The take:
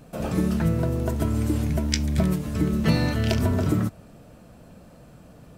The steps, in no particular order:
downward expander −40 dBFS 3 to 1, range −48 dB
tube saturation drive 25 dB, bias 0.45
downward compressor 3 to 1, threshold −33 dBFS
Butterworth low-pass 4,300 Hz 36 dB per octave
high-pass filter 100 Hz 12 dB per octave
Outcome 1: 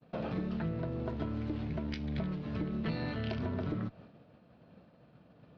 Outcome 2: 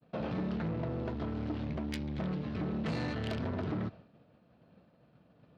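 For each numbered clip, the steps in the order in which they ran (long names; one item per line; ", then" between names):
downward expander, then high-pass filter, then downward compressor, then tube saturation, then Butterworth low-pass
Butterworth low-pass, then tube saturation, then downward compressor, then downward expander, then high-pass filter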